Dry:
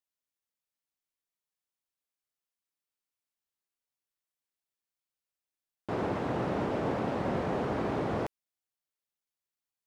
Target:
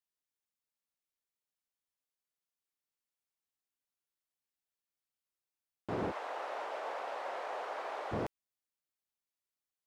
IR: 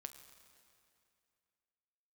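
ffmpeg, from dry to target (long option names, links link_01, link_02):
-filter_complex "[0:a]asplit=3[link_01][link_02][link_03];[link_01]afade=type=out:start_time=6.1:duration=0.02[link_04];[link_02]highpass=frequency=590:width=0.5412,highpass=frequency=590:width=1.3066,afade=type=in:start_time=6.1:duration=0.02,afade=type=out:start_time=8.11:duration=0.02[link_05];[link_03]afade=type=in:start_time=8.11:duration=0.02[link_06];[link_04][link_05][link_06]amix=inputs=3:normalize=0,volume=-3.5dB"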